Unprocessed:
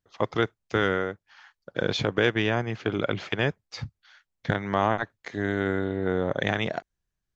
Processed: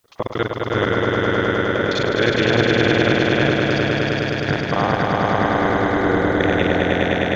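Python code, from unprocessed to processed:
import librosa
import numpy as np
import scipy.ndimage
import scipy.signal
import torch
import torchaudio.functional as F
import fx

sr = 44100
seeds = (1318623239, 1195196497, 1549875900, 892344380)

y = fx.local_reverse(x, sr, ms=39.0)
y = fx.echo_swell(y, sr, ms=103, loudest=5, wet_db=-3)
y = fx.quant_dither(y, sr, seeds[0], bits=12, dither='triangular')
y = y * 10.0 ** (3.0 / 20.0)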